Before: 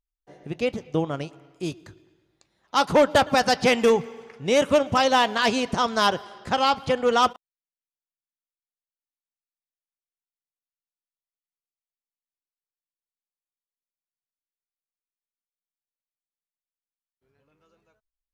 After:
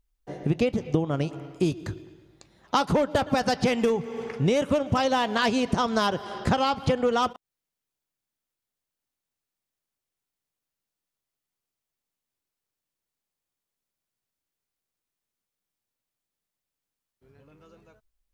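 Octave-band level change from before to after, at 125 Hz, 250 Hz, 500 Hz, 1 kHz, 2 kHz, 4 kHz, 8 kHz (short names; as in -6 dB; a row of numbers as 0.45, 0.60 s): +6.0, +1.5, -3.5, -4.0, -5.0, -5.5, -5.5 dB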